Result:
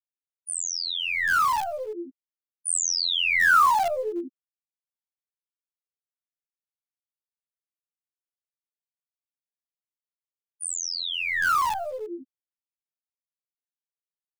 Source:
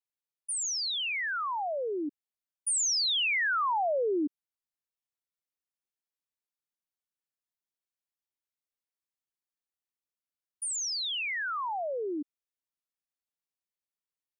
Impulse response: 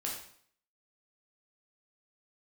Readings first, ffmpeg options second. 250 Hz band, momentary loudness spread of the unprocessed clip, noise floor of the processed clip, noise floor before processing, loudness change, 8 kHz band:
−2.5 dB, 11 LU, below −85 dBFS, below −85 dBFS, +6.0 dB, +2.5 dB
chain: -filter_complex "[0:a]highshelf=frequency=4700:gain=6,afftfilt=real='hypot(re,im)*cos(PI*b)':imag='0':win_size=2048:overlap=0.75,afftfilt=real='re*gte(hypot(re,im),0.0316)':imag='im*gte(hypot(re,im),0.0316)':win_size=1024:overlap=0.75,equalizer=frequency=1300:width_type=o:width=1.7:gain=14.5,acrossover=split=780|1300[link_01][link_02][link_03];[link_02]acrusher=bits=6:dc=4:mix=0:aa=0.000001[link_04];[link_01][link_04][link_03]amix=inputs=3:normalize=0"

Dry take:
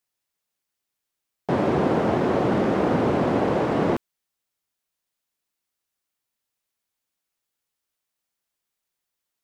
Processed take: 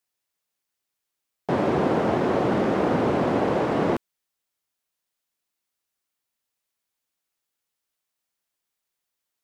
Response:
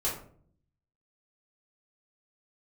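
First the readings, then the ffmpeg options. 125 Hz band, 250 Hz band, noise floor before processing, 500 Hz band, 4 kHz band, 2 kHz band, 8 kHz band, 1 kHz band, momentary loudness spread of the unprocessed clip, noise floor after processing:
−2.0 dB, −1.0 dB, −83 dBFS, −0.5 dB, 0.0 dB, 0.0 dB, can't be measured, 0.0 dB, 4 LU, −83 dBFS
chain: -af "lowshelf=frequency=220:gain=-3"

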